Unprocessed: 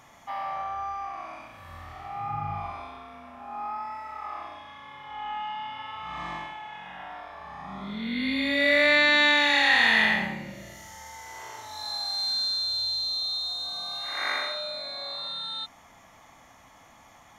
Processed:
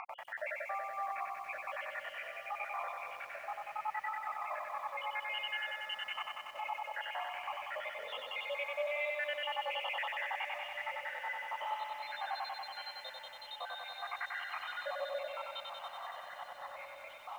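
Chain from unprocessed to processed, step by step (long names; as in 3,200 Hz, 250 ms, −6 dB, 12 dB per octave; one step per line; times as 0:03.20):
time-frequency cells dropped at random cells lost 85%
reverb reduction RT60 0.76 s
Chebyshev band-pass filter 530–3,000 Hz, order 5
reversed playback
downward compressor 8 to 1, threshold −44 dBFS, peak gain reduction 21 dB
reversed playback
brickwall limiter −44.5 dBFS, peak gain reduction 11 dB
upward compression, threshold −58 dBFS
on a send: feedback delay with all-pass diffusion 1,780 ms, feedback 45%, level −13 dB
on the sum: feedback echo at a low word length 94 ms, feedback 80%, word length 13 bits, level −3.5 dB
level +12.5 dB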